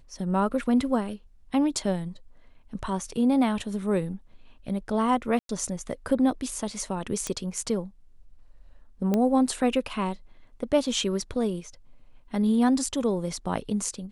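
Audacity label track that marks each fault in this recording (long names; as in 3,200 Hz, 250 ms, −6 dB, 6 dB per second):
5.390000	5.490000	drop-out 102 ms
7.270000	7.270000	click −15 dBFS
9.140000	9.140000	click −13 dBFS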